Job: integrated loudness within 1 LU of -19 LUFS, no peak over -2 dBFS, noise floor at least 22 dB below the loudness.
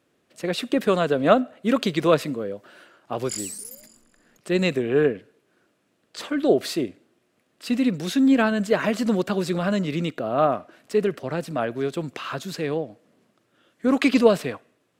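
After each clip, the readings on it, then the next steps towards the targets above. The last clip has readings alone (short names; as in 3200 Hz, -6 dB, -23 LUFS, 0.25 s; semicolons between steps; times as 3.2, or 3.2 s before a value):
loudness -23.5 LUFS; peak -2.5 dBFS; loudness target -19.0 LUFS
-> gain +4.5 dB; limiter -2 dBFS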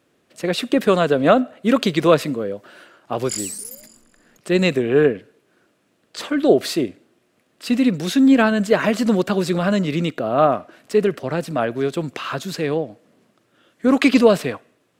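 loudness -19.0 LUFS; peak -2.0 dBFS; noise floor -64 dBFS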